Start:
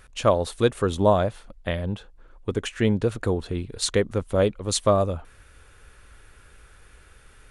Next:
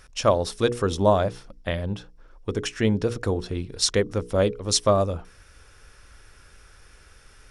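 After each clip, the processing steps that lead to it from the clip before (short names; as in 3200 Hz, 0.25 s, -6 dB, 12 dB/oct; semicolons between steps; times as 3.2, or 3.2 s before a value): bell 5400 Hz +13 dB 0.28 oct; notches 60/120/180/240/300/360/420/480 Hz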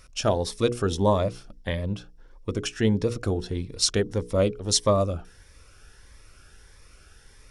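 cascading phaser rising 1.6 Hz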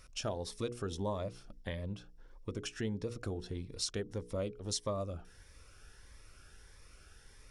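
compressor 2:1, threshold -35 dBFS, peak gain reduction 10.5 dB; gain -5.5 dB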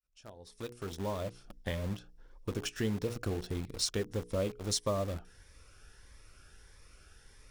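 opening faded in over 1.71 s; in parallel at -4.5 dB: bit-crush 7-bit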